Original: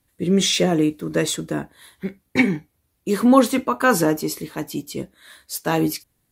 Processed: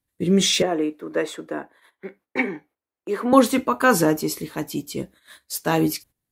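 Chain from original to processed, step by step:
noise gate −45 dBFS, range −13 dB
0:00.62–0:03.33: three-way crossover with the lows and the highs turned down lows −22 dB, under 310 Hz, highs −15 dB, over 2,400 Hz

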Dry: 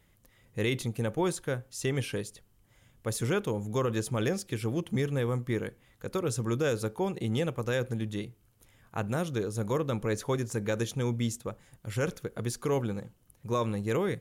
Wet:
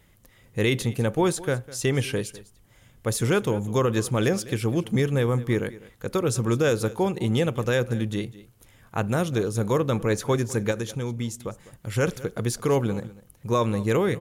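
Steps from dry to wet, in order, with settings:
0:10.71–0:11.94: downward compressor 2.5 to 1, threshold −35 dBFS, peak gain reduction 7 dB
single-tap delay 202 ms −18.5 dB
level +6.5 dB

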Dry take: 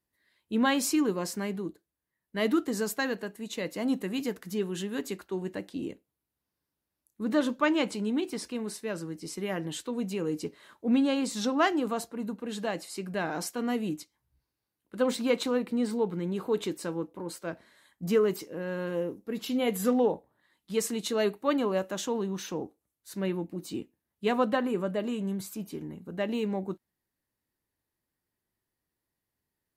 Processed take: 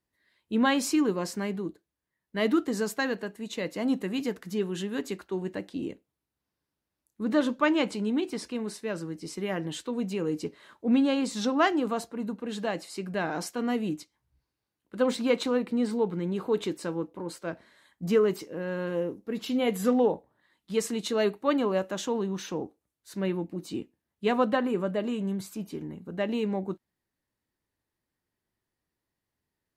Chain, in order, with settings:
high-shelf EQ 9,900 Hz −10.5 dB
level +1.5 dB

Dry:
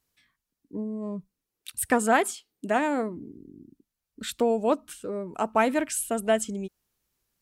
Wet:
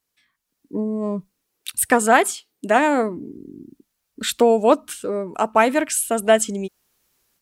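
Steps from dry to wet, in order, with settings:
low-shelf EQ 180 Hz −9.5 dB
automatic gain control gain up to 12 dB

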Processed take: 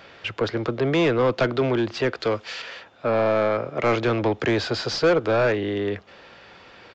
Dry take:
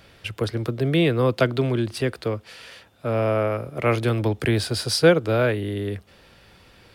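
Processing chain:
0:02.20–0:02.62: high-shelf EQ 3,000 Hz +11.5 dB
mid-hump overdrive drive 23 dB, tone 1,600 Hz, clips at −4 dBFS
downsampling to 16,000 Hz
level −6 dB

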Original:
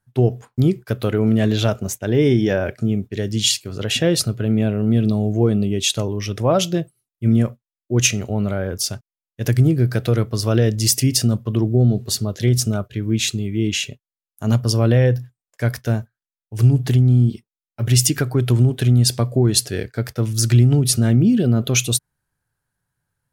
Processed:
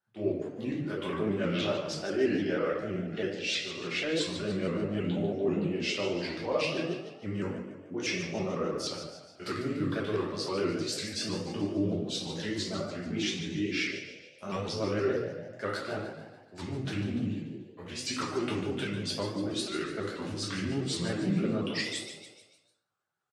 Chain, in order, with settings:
pitch shifter swept by a sawtooth −5 semitones, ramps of 397 ms
high-pass filter 240 Hz 12 dB per octave
low-shelf EQ 390 Hz −7.5 dB
reversed playback
downward compressor, threshold −25 dBFS, peak gain reduction 12 dB
reversed playback
high-frequency loss of the air 100 metres
echo with shifted repeats 146 ms, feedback 49%, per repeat +48 Hz, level −10 dB
rectangular room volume 89 cubic metres, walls mixed, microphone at 1.3 metres
pitch modulation by a square or saw wave saw up 6.2 Hz, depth 100 cents
level −6.5 dB

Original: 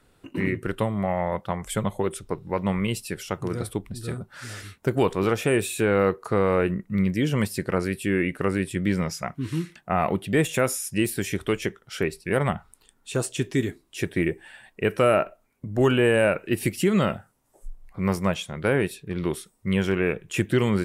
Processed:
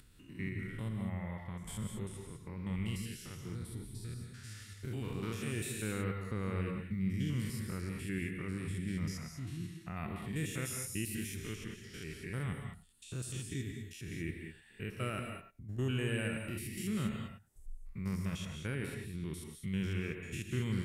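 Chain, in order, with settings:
spectrum averaged block by block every 100 ms
guitar amp tone stack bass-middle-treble 6-0-2
reverb whose tail is shaped and stops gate 230 ms rising, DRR 3.5 dB
upward compression, threshold −56 dBFS
level +5.5 dB

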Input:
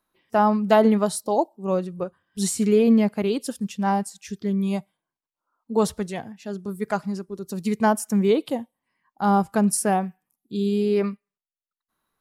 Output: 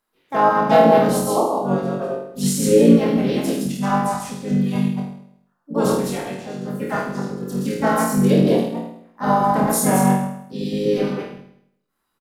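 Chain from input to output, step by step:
delay that plays each chunk backwards 122 ms, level −2 dB
flutter between parallel walls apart 4.5 metres, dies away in 0.7 s
pitch-shifted copies added −5 semitones −6 dB, +4 semitones −4 dB
level −3.5 dB

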